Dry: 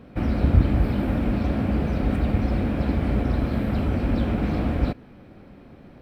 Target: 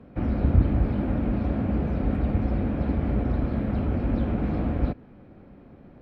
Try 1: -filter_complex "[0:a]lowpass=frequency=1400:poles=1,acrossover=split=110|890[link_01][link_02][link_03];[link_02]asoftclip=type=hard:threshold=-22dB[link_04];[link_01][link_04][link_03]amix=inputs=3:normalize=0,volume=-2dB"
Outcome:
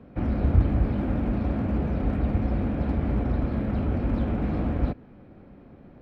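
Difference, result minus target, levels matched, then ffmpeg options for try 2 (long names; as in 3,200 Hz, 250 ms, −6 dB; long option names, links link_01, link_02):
hard clipping: distortion +29 dB
-filter_complex "[0:a]lowpass=frequency=1400:poles=1,acrossover=split=110|890[link_01][link_02][link_03];[link_02]asoftclip=type=hard:threshold=-13.5dB[link_04];[link_01][link_04][link_03]amix=inputs=3:normalize=0,volume=-2dB"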